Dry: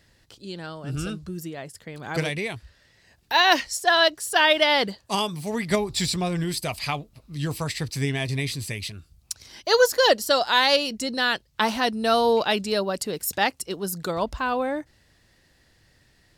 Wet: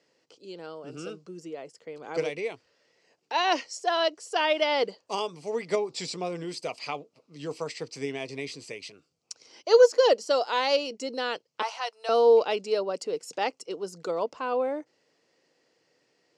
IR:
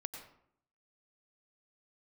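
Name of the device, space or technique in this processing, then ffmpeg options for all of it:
television speaker: -filter_complex "[0:a]asettb=1/sr,asplit=3[link_01][link_02][link_03];[link_01]atrim=end=11.624[link_04];[link_02]atrim=start=11.62:end=12.09,asetpts=PTS-STARTPTS,afade=type=in:duration=0.004:curve=qsin,afade=type=out:start_time=0.466:duration=0.004:curve=qsin,highpass=frequency=750:width=0.5412,highpass=frequency=750:width=1.3066[link_05];[link_03]atrim=start=12.086[link_06];[link_04][link_05]acrossfade=duration=0.004:curve1=hsin:curve2=qsin[link_07];[link_07][link_06]acrossfade=duration=0.004:curve1=qsin:curve2=hsin,highpass=frequency=200:width=0.5412,highpass=frequency=200:width=1.3066,equalizer=frequency=210:width_type=q:width=4:gain=-9,equalizer=frequency=470:width_type=q:width=4:gain=9,equalizer=frequency=1700:width_type=q:width=4:gain=-9,equalizer=frequency=3700:width_type=q:width=4:gain=-9,lowpass=frequency=6900:width=0.5412,lowpass=frequency=6900:width=1.3066,volume=-5dB"

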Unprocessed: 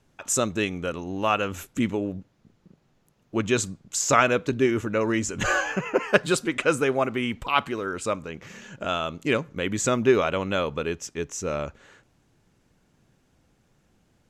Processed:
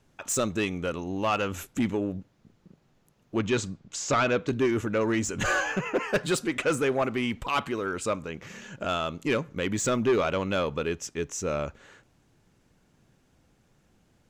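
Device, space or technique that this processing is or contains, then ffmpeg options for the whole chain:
saturation between pre-emphasis and de-emphasis: -filter_complex "[0:a]highshelf=frequency=3700:gain=7.5,asoftclip=type=tanh:threshold=-17.5dB,highshelf=frequency=3700:gain=-7.5,asettb=1/sr,asplit=3[link_01][link_02][link_03];[link_01]atrim=end=3.394[link_04];[link_02]atrim=start=3.39:end=4.48,asetpts=PTS-STARTPTS,afade=type=in:duration=0.004:curve=qsin,afade=type=out:start_time=1.086:duration=0.004:curve=qsin,lowpass=5700[link_05];[link_03]atrim=start=4.476[link_06];[link_04][link_05]acrossfade=duration=0.004:curve1=hsin:curve2=qsin[link_07];[link_07][link_06]acrossfade=duration=0.004:curve1=qsin:curve2=hsin"

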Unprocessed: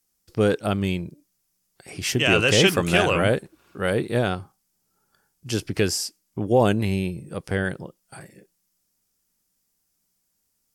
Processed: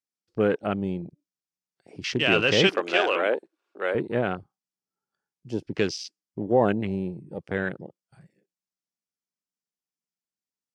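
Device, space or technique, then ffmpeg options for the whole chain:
over-cleaned archive recording: -filter_complex "[0:a]highpass=150,lowpass=6100,afwtdn=0.0251,asettb=1/sr,asplit=3[link_01][link_02][link_03];[link_01]atrim=end=2.694[link_04];[link_02]atrim=start=2.69:end=3.95,asetpts=PTS-STARTPTS,afade=type=in:duration=0.004:curve=qsin,afade=type=out:start_time=1.256:duration=0.004:curve=qsin,highpass=frequency=330:width=0.5412,highpass=frequency=330:width=1.3066[link_05];[link_03]atrim=start=3.946[link_06];[link_04][link_05]acrossfade=duration=0.004:curve1=hsin:curve2=qsin[link_07];[link_07][link_06]acrossfade=duration=0.004:curve1=qsin:curve2=hsin,volume=-2dB"

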